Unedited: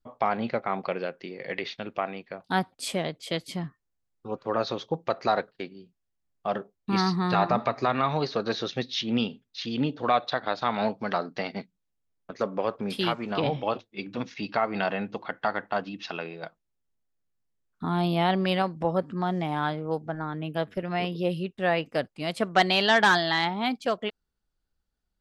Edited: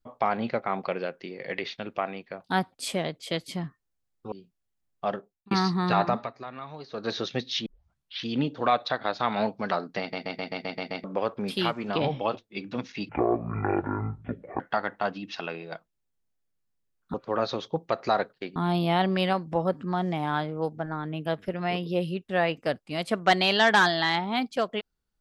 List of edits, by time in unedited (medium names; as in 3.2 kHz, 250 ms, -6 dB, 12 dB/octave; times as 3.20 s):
4.32–5.74 s: move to 17.85 s
6.48–6.93 s: fade out
7.48–8.57 s: dip -14.5 dB, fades 0.27 s
9.08 s: tape start 0.59 s
11.42 s: stutter in place 0.13 s, 8 plays
14.51–15.31 s: speed 53%